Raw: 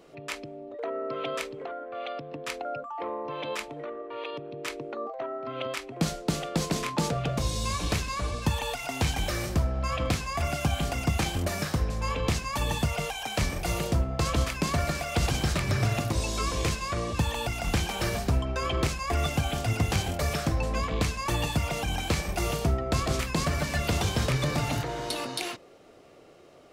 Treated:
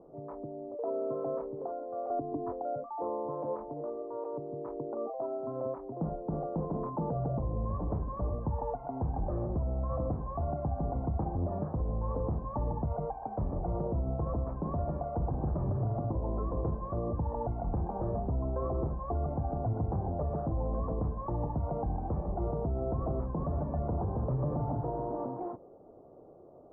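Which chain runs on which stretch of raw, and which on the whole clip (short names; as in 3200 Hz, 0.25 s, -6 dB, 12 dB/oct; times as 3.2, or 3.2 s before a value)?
2.1–2.52 steep low-pass 2100 Hz + low shelf 340 Hz +7.5 dB + comb 2.9 ms, depth 98%
whole clip: steep low-pass 960 Hz 36 dB/oct; limiter -24.5 dBFS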